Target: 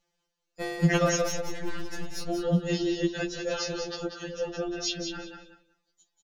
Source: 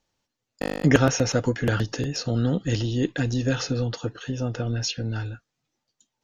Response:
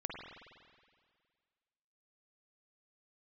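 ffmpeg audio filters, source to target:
-filter_complex "[0:a]asettb=1/sr,asplit=3[link_01][link_02][link_03];[link_01]atrim=end=1.224[link_04];[link_02]atrim=start=1.22:end=2.3,asetpts=PTS-STARTPTS,afade=type=in:duration=0.004:curve=qsin,afade=type=out:start_time=1.076:duration=0.004:curve=qsin,aeval=exprs='(tanh(28.2*val(0)+0.7)-tanh(0.7))/28.2':channel_layout=same[link_05];[link_03]atrim=start=2.296[link_06];[link_04][link_05]acrossfade=duration=0.004:curve1=hsin:curve2=qsin[link_07];[link_07][link_06]acrossfade=duration=0.004:curve1=qsin:curve2=hsin,aecho=1:1:188|376|564:0.447|0.0804|0.0145,afftfilt=real='re*2.83*eq(mod(b,8),0)':imag='im*2.83*eq(mod(b,8),0)':win_size=2048:overlap=0.75"

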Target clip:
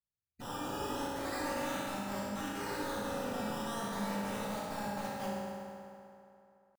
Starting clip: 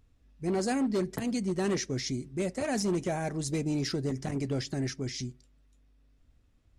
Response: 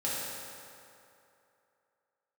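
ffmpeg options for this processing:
-filter_complex "[0:a]agate=range=-24dB:threshold=-51dB:ratio=16:detection=peak,afwtdn=0.01,equalizer=frequency=5300:width=2.8:gain=-11.5,acrossover=split=170|3000[link_01][link_02][link_03];[link_02]acompressor=threshold=-39dB:ratio=6[link_04];[link_01][link_04][link_03]amix=inputs=3:normalize=0,alimiter=level_in=7dB:limit=-24dB:level=0:latency=1:release=12,volume=-7dB,aeval=exprs='(mod(50.1*val(0)+1,2)-1)/50.1':channel_layout=same,asetrate=68011,aresample=44100,atempo=0.64842,acrusher=samples=14:mix=1:aa=0.000001:lfo=1:lforange=14:lforate=0.37,aeval=exprs='0.0126*(abs(mod(val(0)/0.0126+3,4)-2)-1)':channel_layout=same[link_05];[1:a]atrim=start_sample=2205[link_06];[link_05][link_06]afir=irnorm=-1:irlink=0,volume=-2dB"

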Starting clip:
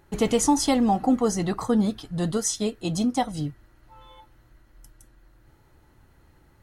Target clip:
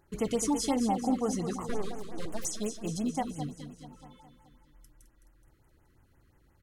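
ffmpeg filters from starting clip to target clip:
ffmpeg -i in.wav -filter_complex "[0:a]asettb=1/sr,asplit=3[link_01][link_02][link_03];[link_01]atrim=end=1.694[link_04];[link_02]atrim=start=1.69:end=2.45,asetpts=PTS-STARTPTS,afade=type=in:duration=0.004:curve=qsin,afade=type=out:start_time=0.756:duration=0.004:curve=qsin,aeval=exprs='abs(val(0))':channel_layout=same[link_05];[link_03]atrim=start=2.446[link_06];[link_04][link_05]acrossfade=duration=0.004:curve1=hsin:curve2=qsin[link_07];[link_07][link_06]acrossfade=duration=0.004:curve1=qsin:curve2=hsin,aecho=1:1:212|424|636|848|1060|1272|1484:0.355|0.202|0.115|0.0657|0.0375|0.0213|0.0122,afftfilt=real='re*(1-between(b*sr/1024,690*pow(4700/690,0.5+0.5*sin(2*PI*5.7*pts/sr))/1.41,690*pow(4700/690,0.5+0.5*sin(2*PI*5.7*pts/sr))*1.41))':imag='im*(1-between(b*sr/1024,690*pow(4700/690,0.5+0.5*sin(2*PI*5.7*pts/sr))/1.41,690*pow(4700/690,0.5+0.5*sin(2*PI*5.7*pts/sr))*1.41))':win_size=1024:overlap=0.75,volume=-8dB" out.wav

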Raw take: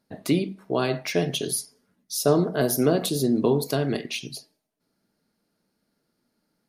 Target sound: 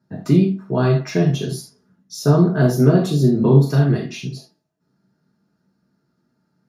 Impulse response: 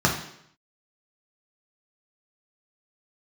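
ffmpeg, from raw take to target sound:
-filter_complex "[0:a]asettb=1/sr,asplit=3[link_01][link_02][link_03];[link_01]atrim=end=3.354[link_04];[link_02]atrim=start=3.35:end=3.76,asetpts=PTS-STARTPTS,afade=type=in:duration=0.004:curve=qsin,afade=type=out:start_time=0.406:duration=0.004:curve=qsin,asplit=2[link_05][link_06];[link_06]adelay=36,volume=-6.5dB[link_07];[link_05][link_07]amix=inputs=2:normalize=0,atrim=end_sample=18081[link_08];[link_03]atrim=start=3.756[link_09];[link_04][link_08]acrossfade=duration=0.004:curve1=hsin:curve2=qsin[link_10];[link_10][link_09]acrossfade=duration=0.004:curve1=qsin:curve2=hsin[link_11];[1:a]atrim=start_sample=2205,afade=type=out:start_time=0.14:duration=0.01,atrim=end_sample=6615[link_12];[link_11][link_12]afir=irnorm=-1:irlink=0,volume=-13.5dB"

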